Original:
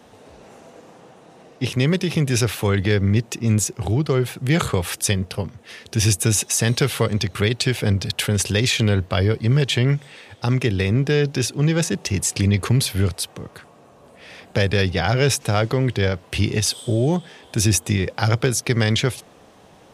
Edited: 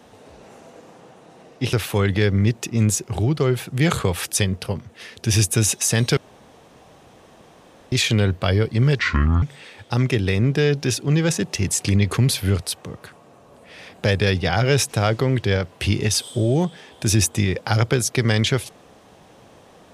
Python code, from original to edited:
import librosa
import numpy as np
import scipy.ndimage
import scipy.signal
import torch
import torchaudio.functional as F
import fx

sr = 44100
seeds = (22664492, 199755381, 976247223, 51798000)

y = fx.edit(x, sr, fx.cut(start_s=1.73, length_s=0.69),
    fx.room_tone_fill(start_s=6.86, length_s=1.75),
    fx.speed_span(start_s=9.68, length_s=0.26, speed=0.6), tone=tone)